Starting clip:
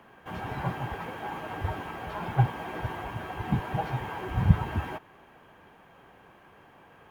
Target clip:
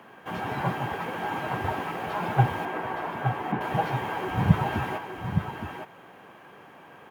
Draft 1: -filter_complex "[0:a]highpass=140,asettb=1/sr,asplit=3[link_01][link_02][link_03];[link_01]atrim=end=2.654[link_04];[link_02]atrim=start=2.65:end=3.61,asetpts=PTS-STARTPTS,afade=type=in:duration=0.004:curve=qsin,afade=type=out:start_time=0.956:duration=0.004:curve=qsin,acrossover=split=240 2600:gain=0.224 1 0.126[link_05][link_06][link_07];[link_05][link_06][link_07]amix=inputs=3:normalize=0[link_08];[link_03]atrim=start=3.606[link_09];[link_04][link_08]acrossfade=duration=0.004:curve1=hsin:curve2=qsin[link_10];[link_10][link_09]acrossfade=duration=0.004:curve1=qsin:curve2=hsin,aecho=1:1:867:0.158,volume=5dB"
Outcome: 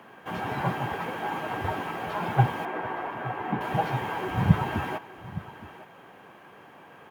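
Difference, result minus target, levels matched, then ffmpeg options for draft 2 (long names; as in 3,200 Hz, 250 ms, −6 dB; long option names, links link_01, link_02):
echo-to-direct −9.5 dB
-filter_complex "[0:a]highpass=140,asettb=1/sr,asplit=3[link_01][link_02][link_03];[link_01]atrim=end=2.654[link_04];[link_02]atrim=start=2.65:end=3.61,asetpts=PTS-STARTPTS,afade=type=in:duration=0.004:curve=qsin,afade=type=out:start_time=0.956:duration=0.004:curve=qsin,acrossover=split=240 2600:gain=0.224 1 0.126[link_05][link_06][link_07];[link_05][link_06][link_07]amix=inputs=3:normalize=0[link_08];[link_03]atrim=start=3.606[link_09];[link_04][link_08]acrossfade=duration=0.004:curve1=hsin:curve2=qsin[link_10];[link_10][link_09]acrossfade=duration=0.004:curve1=qsin:curve2=hsin,aecho=1:1:867:0.473,volume=5dB"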